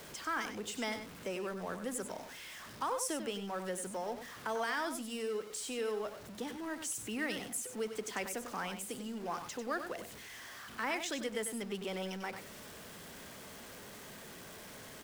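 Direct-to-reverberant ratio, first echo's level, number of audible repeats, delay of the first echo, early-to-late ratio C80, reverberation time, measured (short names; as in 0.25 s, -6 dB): none, -9.0 dB, 1, 96 ms, none, none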